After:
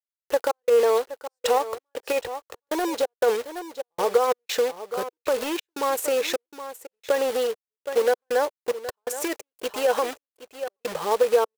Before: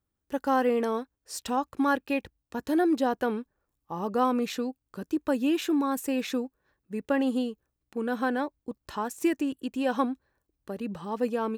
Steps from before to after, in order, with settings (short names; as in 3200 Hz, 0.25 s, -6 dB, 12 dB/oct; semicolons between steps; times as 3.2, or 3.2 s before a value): in parallel at -6 dB: overloaded stage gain 22.5 dB; on the sum: bell 130 Hz +4 dB 0.7 oct; companded quantiser 4-bit; on a send: echo 0.769 s -18 dB; on the sum: limiter -18 dBFS, peak gain reduction 6.5 dB; compressor, threshold -26 dBFS, peak gain reduction 6.5 dB; step gate "..xxxx..xxxxxxx" 177 bpm -60 dB; resonant low shelf 340 Hz -11.5 dB, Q 3; gain +6.5 dB